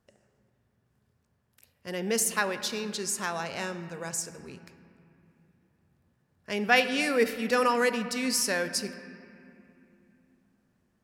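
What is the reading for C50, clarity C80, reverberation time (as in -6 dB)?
11.0 dB, 12.0 dB, 2.8 s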